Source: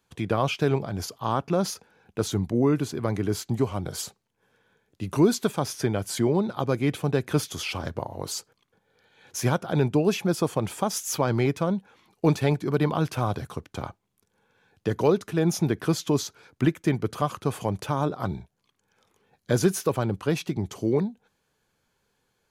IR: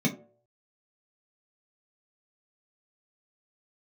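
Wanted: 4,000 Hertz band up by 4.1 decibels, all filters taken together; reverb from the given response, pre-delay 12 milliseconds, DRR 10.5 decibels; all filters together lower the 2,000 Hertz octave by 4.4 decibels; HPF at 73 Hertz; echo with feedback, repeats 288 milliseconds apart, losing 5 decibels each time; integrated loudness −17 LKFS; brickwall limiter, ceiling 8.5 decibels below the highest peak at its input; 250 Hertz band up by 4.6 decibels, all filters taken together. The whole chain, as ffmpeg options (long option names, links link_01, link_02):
-filter_complex "[0:a]highpass=73,equalizer=frequency=250:width_type=o:gain=6.5,equalizer=frequency=2000:width_type=o:gain=-8.5,equalizer=frequency=4000:width_type=o:gain=7.5,alimiter=limit=-14.5dB:level=0:latency=1,aecho=1:1:288|576|864|1152|1440|1728|2016:0.562|0.315|0.176|0.0988|0.0553|0.031|0.0173,asplit=2[link_01][link_02];[1:a]atrim=start_sample=2205,adelay=12[link_03];[link_02][link_03]afir=irnorm=-1:irlink=0,volume=-19.5dB[link_04];[link_01][link_04]amix=inputs=2:normalize=0,volume=4dB"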